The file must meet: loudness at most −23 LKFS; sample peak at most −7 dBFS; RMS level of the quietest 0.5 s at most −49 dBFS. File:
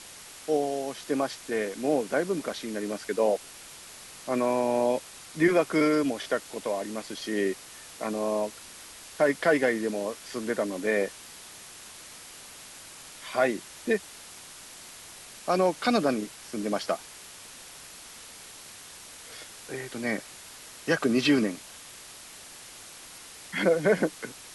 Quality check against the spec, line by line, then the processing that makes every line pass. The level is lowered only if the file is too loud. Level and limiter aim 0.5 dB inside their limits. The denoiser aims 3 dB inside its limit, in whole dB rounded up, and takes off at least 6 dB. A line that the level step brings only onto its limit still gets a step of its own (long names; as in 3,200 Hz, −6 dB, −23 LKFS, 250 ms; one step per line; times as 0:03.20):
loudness −28.0 LKFS: in spec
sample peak −11.0 dBFS: in spec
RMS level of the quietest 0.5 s −46 dBFS: out of spec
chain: broadband denoise 6 dB, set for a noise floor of −46 dBFS